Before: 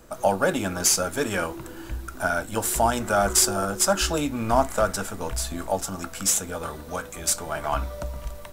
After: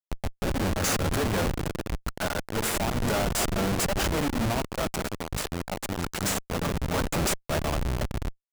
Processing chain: high shelf 11000 Hz +8.5 dB; notches 60/120/180/240/300/360/420/480/540 Hz; compressor 12:1, threshold -31 dBFS, peak gain reduction 19 dB; spring tank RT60 3.4 s, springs 41 ms, chirp 20 ms, DRR 9 dB; AGC gain up to 10.5 dB; Schmitt trigger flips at -23.5 dBFS; limiter -22 dBFS, peak gain reduction 3 dB

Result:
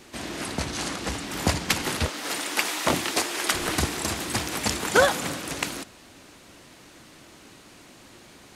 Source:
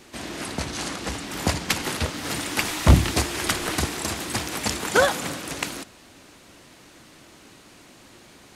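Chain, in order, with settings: 2.08–3.54 HPF 350 Hz 12 dB/oct

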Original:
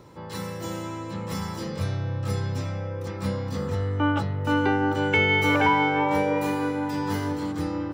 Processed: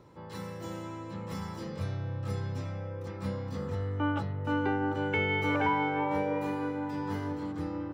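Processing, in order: high shelf 3800 Hz -6.5 dB, from 4.32 s -11.5 dB; gain -6.5 dB

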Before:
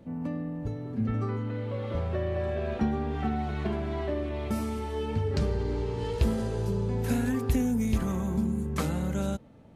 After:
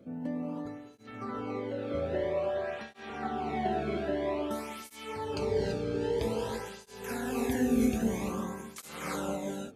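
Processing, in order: non-linear reverb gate 0.36 s rising, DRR -1.5 dB; tape flanging out of phase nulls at 0.51 Hz, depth 1.1 ms

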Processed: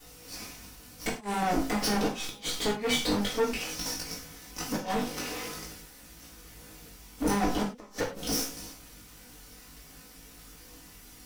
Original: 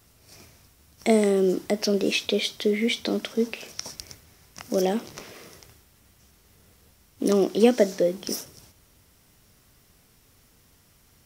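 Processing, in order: minimum comb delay 4 ms; chorus 0.48 Hz, delay 18 ms, depth 2.1 ms; flipped gate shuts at -16 dBFS, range -36 dB; in parallel at -0.5 dB: compressor, threshold -41 dBFS, peak gain reduction 18 dB; on the sum: soft clip -30 dBFS, distortion -7 dB; non-linear reverb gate 0.13 s falling, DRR -0.5 dB; gain +4.5 dB

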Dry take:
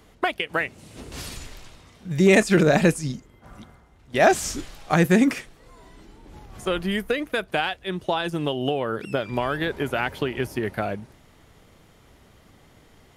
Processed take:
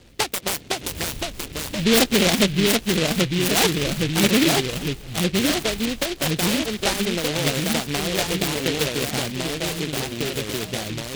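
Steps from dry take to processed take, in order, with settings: bell 1100 Hz -10 dB 1.6 oct; in parallel at -1 dB: compressor, threshold -30 dBFS, peak gain reduction 15.5 dB; on the sum: LFO low-pass saw up 4.2 Hz 660–3000 Hz; varispeed +18%; echoes that change speed 0.485 s, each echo -2 st, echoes 3; on a send: thinning echo 1.19 s, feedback 37%, level -23.5 dB; on the sum: noise-modulated delay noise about 2800 Hz, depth 0.24 ms; gain -1.5 dB

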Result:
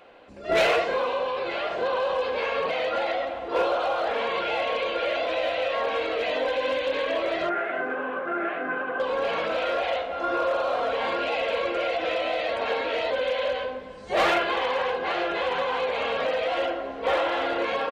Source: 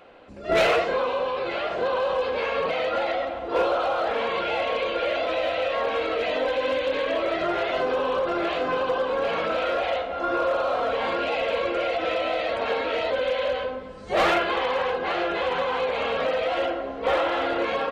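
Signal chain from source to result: low shelf 300 Hz -5.5 dB; notch 1300 Hz, Q 17; 7.49–9 speaker cabinet 180–2100 Hz, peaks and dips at 240 Hz +5 dB, 520 Hz -8 dB, 960 Hz -9 dB, 1500 Hz +7 dB; speakerphone echo 0.33 s, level -21 dB

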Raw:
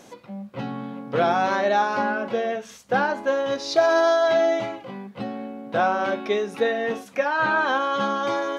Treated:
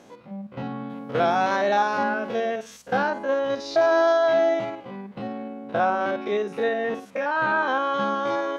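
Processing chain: stepped spectrum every 50 ms; high shelf 4200 Hz -9.5 dB, from 0.9 s +2 dB, from 3.1 s -7.5 dB

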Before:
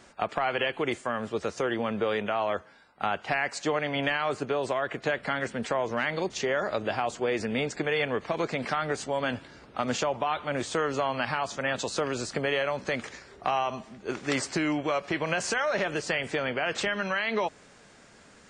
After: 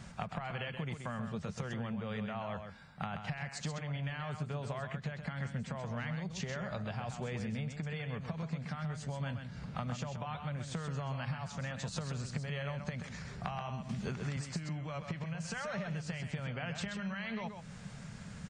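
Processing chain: resonant low shelf 230 Hz +11.5 dB, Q 3; compressor 16:1, threshold -36 dBFS, peak gain reduction 23 dB; echo 0.13 s -7 dB; 13.89–14.37 three-band squash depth 100%

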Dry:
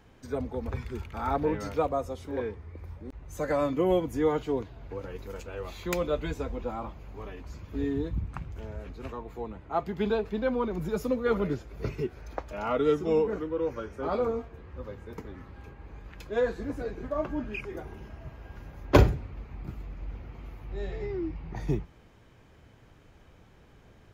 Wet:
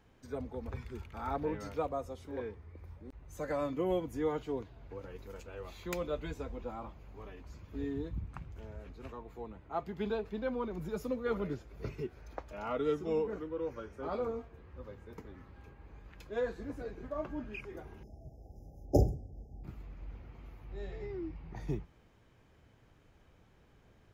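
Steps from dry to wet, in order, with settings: 18.03–19.64 brick-wall FIR band-stop 850–4900 Hz; gain -7.5 dB

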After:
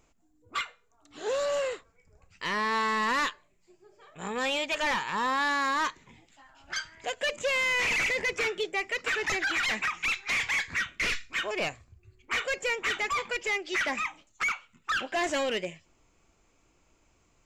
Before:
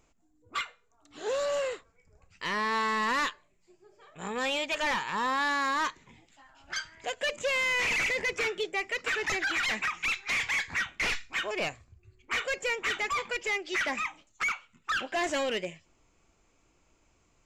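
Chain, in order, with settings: 10.69–11.39 bell 820 Hz -13.5 dB 0.38 oct; gain +1 dB

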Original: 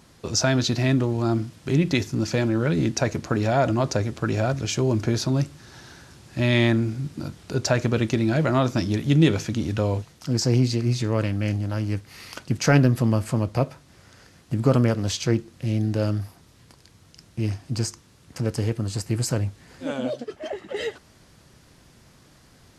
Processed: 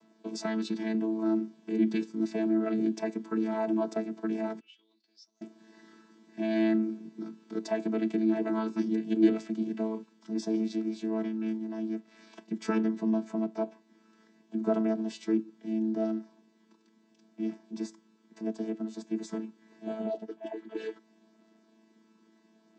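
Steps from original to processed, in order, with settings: chord vocoder bare fifth, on A3; 4.59–5.41 band-pass 2600 Hz -> 6600 Hz, Q 14; gain -7 dB

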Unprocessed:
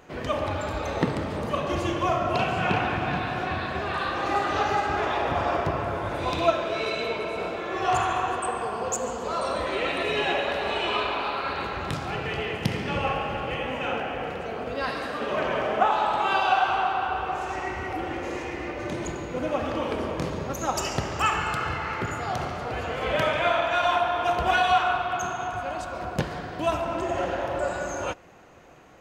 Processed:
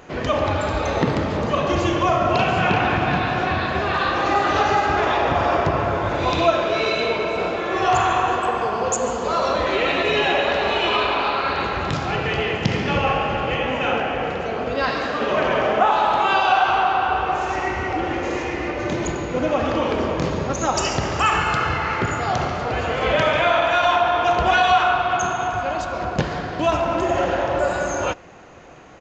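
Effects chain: downsampling 16000 Hz; in parallel at +2.5 dB: limiter -18 dBFS, peak gain reduction 10 dB

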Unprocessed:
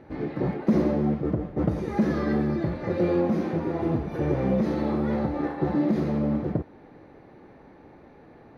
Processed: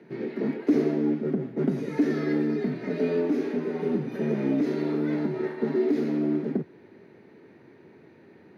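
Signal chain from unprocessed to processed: band shelf 710 Hz -9.5 dB; frequency shift +79 Hz

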